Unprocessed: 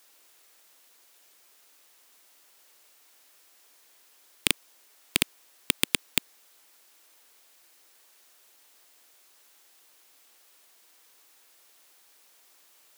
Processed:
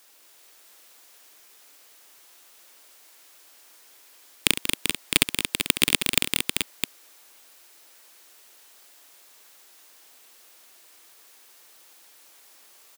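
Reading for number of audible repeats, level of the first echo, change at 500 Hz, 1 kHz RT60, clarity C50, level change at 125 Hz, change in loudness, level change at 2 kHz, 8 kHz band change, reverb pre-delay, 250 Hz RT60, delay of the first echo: 6, -11.5 dB, +6.0 dB, no reverb, no reverb, +6.5 dB, +4.5 dB, +6.0 dB, +6.0 dB, no reverb, no reverb, 68 ms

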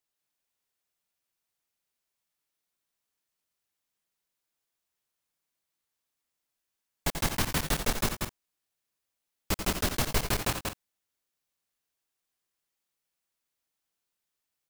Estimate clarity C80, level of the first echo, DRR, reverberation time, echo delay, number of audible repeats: no reverb, -8.5 dB, no reverb, no reverb, 87 ms, 3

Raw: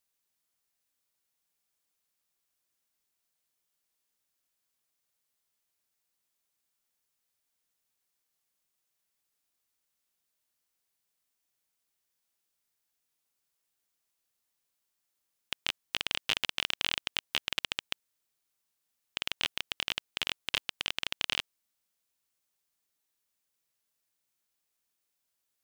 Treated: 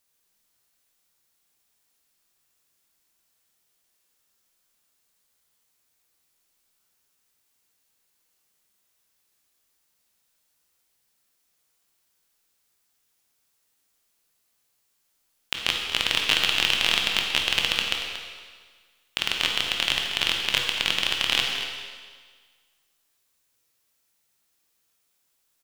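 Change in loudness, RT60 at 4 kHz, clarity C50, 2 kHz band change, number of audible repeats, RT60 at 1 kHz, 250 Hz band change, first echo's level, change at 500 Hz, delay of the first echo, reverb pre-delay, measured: +10.0 dB, 1.6 s, 2.0 dB, +10.5 dB, 1, 1.6 s, +10.5 dB, -11.0 dB, +10.5 dB, 232 ms, 15 ms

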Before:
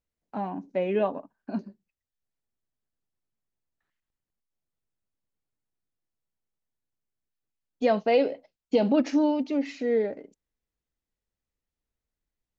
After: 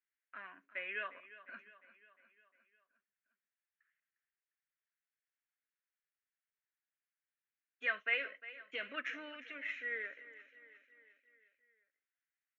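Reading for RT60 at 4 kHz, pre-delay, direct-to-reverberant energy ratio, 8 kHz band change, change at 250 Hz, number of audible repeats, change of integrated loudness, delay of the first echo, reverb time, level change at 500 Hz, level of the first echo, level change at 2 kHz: no reverb, no reverb, no reverb, no reading, -32.0 dB, 4, -13.5 dB, 354 ms, no reverb, -25.0 dB, -16.0 dB, +3.5 dB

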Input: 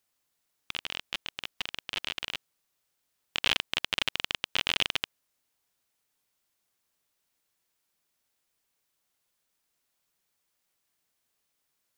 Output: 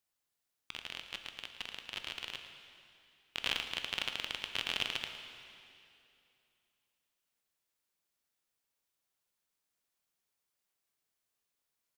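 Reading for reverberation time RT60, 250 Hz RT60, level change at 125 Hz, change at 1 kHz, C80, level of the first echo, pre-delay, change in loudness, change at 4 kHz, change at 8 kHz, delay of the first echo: 2.7 s, 2.7 s, -7.0 dB, -7.0 dB, 7.0 dB, -13.0 dB, 6 ms, -7.0 dB, -7.0 dB, -7.0 dB, 112 ms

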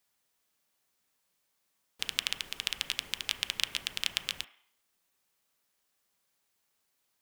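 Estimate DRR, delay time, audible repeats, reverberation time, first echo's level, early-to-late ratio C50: 8.5 dB, no echo, no echo, 0.65 s, no echo, 14.0 dB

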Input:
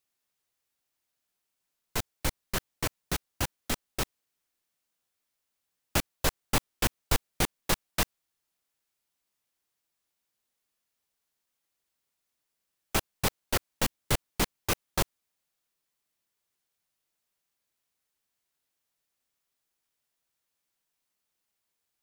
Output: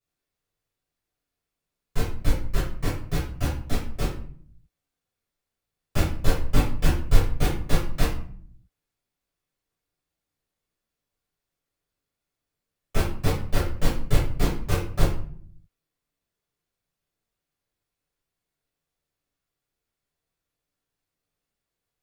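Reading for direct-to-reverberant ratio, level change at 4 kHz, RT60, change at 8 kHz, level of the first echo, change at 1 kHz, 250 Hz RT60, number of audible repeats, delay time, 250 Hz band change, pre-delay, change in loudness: -9.5 dB, -3.0 dB, 0.50 s, -5.5 dB, no echo, +0.5 dB, 0.90 s, no echo, no echo, +6.5 dB, 7 ms, +3.5 dB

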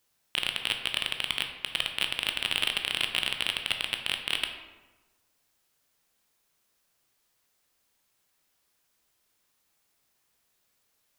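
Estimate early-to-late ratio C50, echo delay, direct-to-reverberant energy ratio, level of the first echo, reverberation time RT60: 7.0 dB, no echo, 4.5 dB, no echo, 1.2 s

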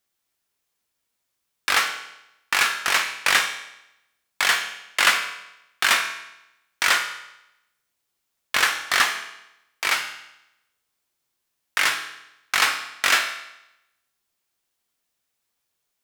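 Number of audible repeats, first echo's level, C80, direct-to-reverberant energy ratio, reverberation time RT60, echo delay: no echo, no echo, 10.5 dB, 4.0 dB, 0.85 s, no echo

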